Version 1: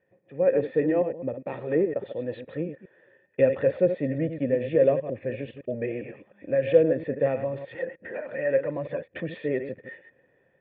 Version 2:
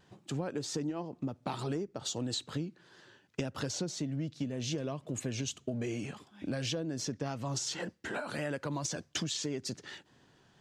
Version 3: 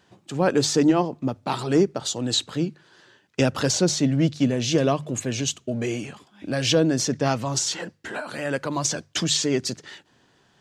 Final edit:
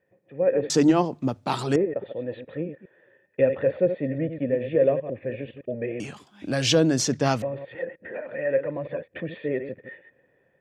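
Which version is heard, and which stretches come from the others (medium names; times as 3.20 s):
1
0.70–1.76 s: from 3
6.00–7.42 s: from 3
not used: 2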